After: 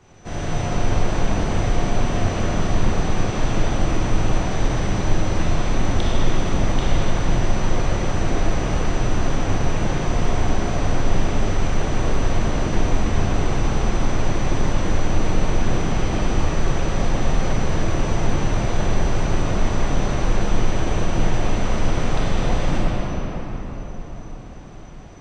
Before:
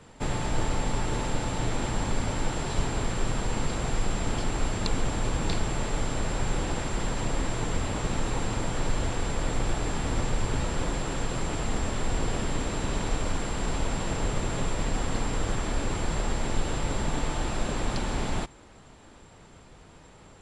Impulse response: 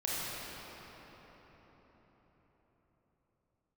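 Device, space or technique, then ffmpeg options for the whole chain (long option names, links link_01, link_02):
slowed and reverbed: -filter_complex "[0:a]asetrate=35721,aresample=44100[link_01];[1:a]atrim=start_sample=2205[link_02];[link_01][link_02]afir=irnorm=-1:irlink=0"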